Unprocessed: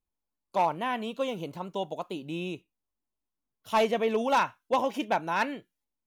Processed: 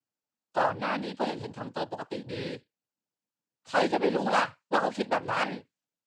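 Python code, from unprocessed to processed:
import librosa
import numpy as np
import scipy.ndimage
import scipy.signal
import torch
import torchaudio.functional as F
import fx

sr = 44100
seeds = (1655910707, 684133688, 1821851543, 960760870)

y = fx.noise_vocoder(x, sr, seeds[0], bands=8)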